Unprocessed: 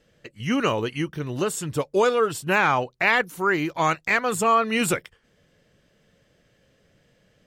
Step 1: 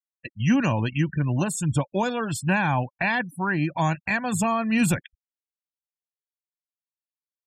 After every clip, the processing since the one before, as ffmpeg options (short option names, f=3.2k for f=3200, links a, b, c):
-filter_complex "[0:a]afftfilt=real='re*gte(hypot(re,im),0.0158)':imag='im*gte(hypot(re,im),0.0158)':win_size=1024:overlap=0.75,aecho=1:1:1.2:0.76,acrossover=split=330[a][b];[b]acompressor=threshold=-37dB:ratio=2[c];[a][c]amix=inputs=2:normalize=0,volume=4.5dB"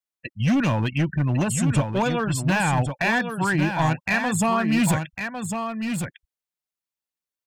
-af "asoftclip=type=hard:threshold=-19dB,aecho=1:1:1102:0.473,volume=2.5dB"